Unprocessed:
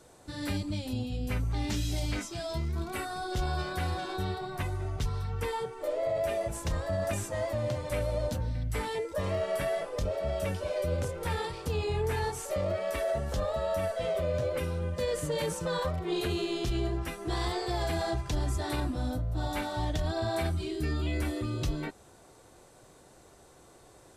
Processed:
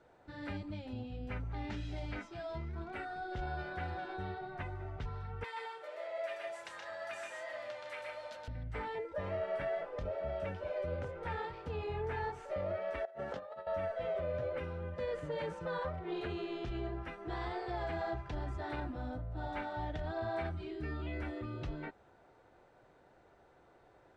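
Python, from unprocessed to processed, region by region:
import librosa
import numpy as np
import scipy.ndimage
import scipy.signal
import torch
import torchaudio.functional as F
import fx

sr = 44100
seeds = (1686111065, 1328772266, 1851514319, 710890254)

y = fx.chain(x, sr, fx.highpass(hz=1200.0, slope=6),
    fx.tilt_eq(slope=3.0),
    fx.echo_multitap(ms=(124, 157), db=(-3.0, -7.5)), at=(5.44, 8.48))
y = fx.chain(y, sr, fx.highpass(hz=210.0, slope=12),
    fx.over_compress(threshold_db=-37.0, ratio=-0.5), at=(13.05, 13.67))
y = scipy.signal.sosfilt(scipy.signal.butter(2, 1500.0, 'lowpass', fs=sr, output='sos'), y)
y = fx.tilt_shelf(y, sr, db=-6.0, hz=790.0)
y = fx.notch(y, sr, hz=1100.0, q=7.6)
y = y * 10.0 ** (-4.0 / 20.0)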